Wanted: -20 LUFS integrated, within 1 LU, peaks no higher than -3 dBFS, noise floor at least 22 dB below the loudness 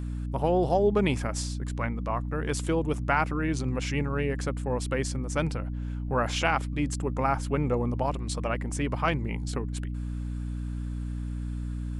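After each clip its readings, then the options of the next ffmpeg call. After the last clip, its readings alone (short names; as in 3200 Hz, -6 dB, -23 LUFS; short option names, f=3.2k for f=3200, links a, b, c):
hum 60 Hz; harmonics up to 300 Hz; hum level -30 dBFS; loudness -29.0 LUFS; peak -9.5 dBFS; loudness target -20.0 LUFS
-> -af "bandreject=f=60:t=h:w=4,bandreject=f=120:t=h:w=4,bandreject=f=180:t=h:w=4,bandreject=f=240:t=h:w=4,bandreject=f=300:t=h:w=4"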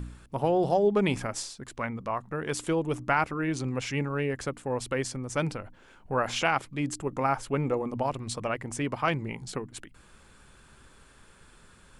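hum none; loudness -29.5 LUFS; peak -10.0 dBFS; loudness target -20.0 LUFS
-> -af "volume=9.5dB,alimiter=limit=-3dB:level=0:latency=1"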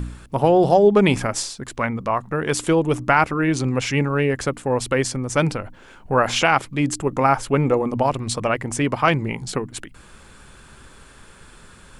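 loudness -20.5 LUFS; peak -3.0 dBFS; noise floor -47 dBFS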